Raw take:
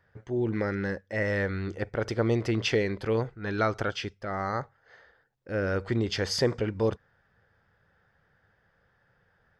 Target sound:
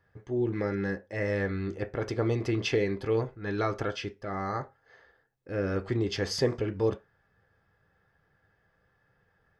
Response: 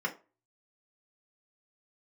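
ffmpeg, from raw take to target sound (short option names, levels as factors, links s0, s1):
-filter_complex "[0:a]asplit=2[s0][s1];[1:a]atrim=start_sample=2205,afade=t=out:st=0.25:d=0.01,atrim=end_sample=11466,asetrate=57330,aresample=44100[s2];[s1][s2]afir=irnorm=-1:irlink=0,volume=0.376[s3];[s0][s3]amix=inputs=2:normalize=0,volume=0.841"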